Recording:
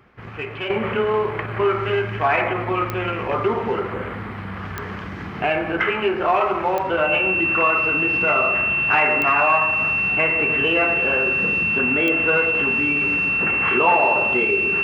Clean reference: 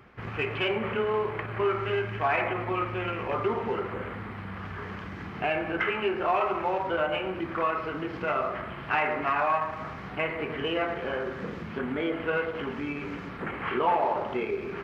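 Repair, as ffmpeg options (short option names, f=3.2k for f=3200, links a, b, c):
-af "adeclick=t=4,bandreject=f=2.7k:w=30,asetnsamples=n=441:p=0,asendcmd='0.7 volume volume -7dB',volume=0dB"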